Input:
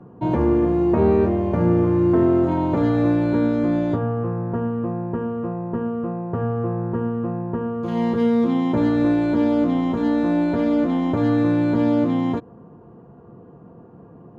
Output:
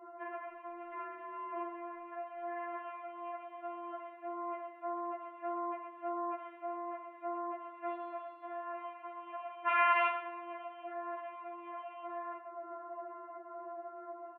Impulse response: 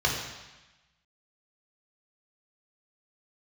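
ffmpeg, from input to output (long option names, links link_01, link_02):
-filter_complex "[0:a]dynaudnorm=framelen=830:gausssize=7:maxgain=11.5dB,alimiter=limit=-7.5dB:level=0:latency=1:release=281,acompressor=threshold=-29dB:ratio=6,asettb=1/sr,asplit=3[link_01][link_02][link_03];[link_01]atrim=end=9.674[link_04];[link_02]atrim=start=9.67:end=10.09,asetpts=PTS-STARTPTS,afade=type=in:duration=0.004:curve=qsin,afade=type=out:start_time=0.416:duration=0.004:curve=qsin,aeval=exprs='0.0841*sin(PI/2*7.08*val(0)/0.0841)':channel_layout=same[link_05];[link_03]atrim=start=10.086[link_06];[link_04][link_05]acrossfade=duration=0.004:curve1=hsin:curve2=qsin[link_07];[link_07][link_06]acrossfade=duration=0.004:curve1=qsin:curve2=hsin,asplit=2[link_08][link_09];[link_09]adelay=120,highpass=300,lowpass=3400,asoftclip=type=hard:threshold=-30dB,volume=-11dB[link_10];[link_08][link_10]amix=inputs=2:normalize=0,asoftclip=type=hard:threshold=-26.5dB,asplit=2[link_11][link_12];[1:a]atrim=start_sample=2205,asetrate=48510,aresample=44100[link_13];[link_12][link_13]afir=irnorm=-1:irlink=0,volume=-17.5dB[link_14];[link_11][link_14]amix=inputs=2:normalize=0,highpass=frequency=280:width_type=q:width=0.5412,highpass=frequency=280:width_type=q:width=1.307,lowpass=frequency=2300:width_type=q:width=0.5176,lowpass=frequency=2300:width_type=q:width=0.7071,lowpass=frequency=2300:width_type=q:width=1.932,afreqshift=170,afftfilt=real='re*4*eq(mod(b,16),0)':imag='im*4*eq(mod(b,16),0)':win_size=2048:overlap=0.75,volume=2.5dB"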